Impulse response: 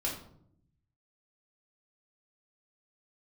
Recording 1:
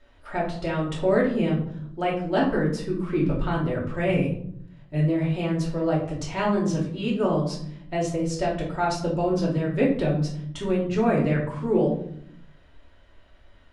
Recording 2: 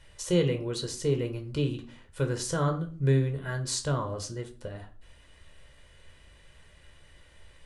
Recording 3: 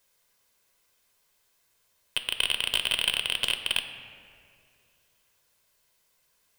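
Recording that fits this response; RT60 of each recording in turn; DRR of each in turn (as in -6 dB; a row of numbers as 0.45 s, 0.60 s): 1; 0.65 s, 0.40 s, 2.4 s; -5.5 dB, 5.0 dB, 7.0 dB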